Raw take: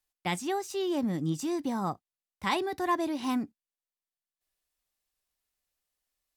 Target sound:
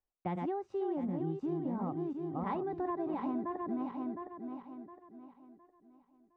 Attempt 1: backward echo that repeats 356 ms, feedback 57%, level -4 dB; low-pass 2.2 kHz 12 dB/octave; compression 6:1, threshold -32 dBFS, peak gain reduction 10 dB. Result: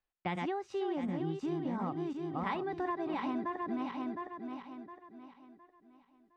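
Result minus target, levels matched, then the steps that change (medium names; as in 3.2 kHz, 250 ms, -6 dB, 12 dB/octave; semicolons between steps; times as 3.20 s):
2 kHz band +9.5 dB
change: low-pass 880 Hz 12 dB/octave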